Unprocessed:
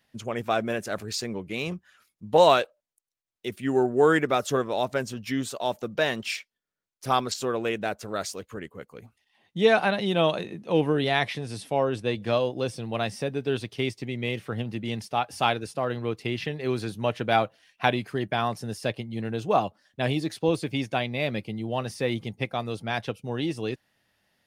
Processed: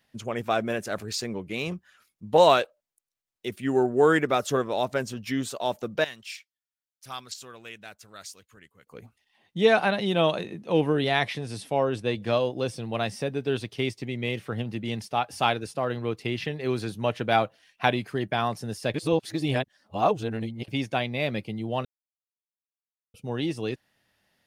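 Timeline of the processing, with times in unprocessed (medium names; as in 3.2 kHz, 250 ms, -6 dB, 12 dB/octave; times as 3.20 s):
6.04–8.87 s: amplifier tone stack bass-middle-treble 5-5-5
18.94–20.68 s: reverse
21.85–23.14 s: mute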